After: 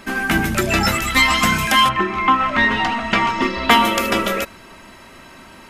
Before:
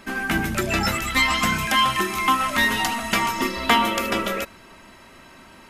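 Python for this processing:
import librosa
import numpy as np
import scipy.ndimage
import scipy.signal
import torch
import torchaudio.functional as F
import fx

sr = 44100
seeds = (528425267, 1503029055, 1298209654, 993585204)

y = fx.lowpass(x, sr, hz=fx.line((1.88, 1900.0), (3.69, 4300.0)), slope=12, at=(1.88, 3.69), fade=0.02)
y = y * librosa.db_to_amplitude(5.0)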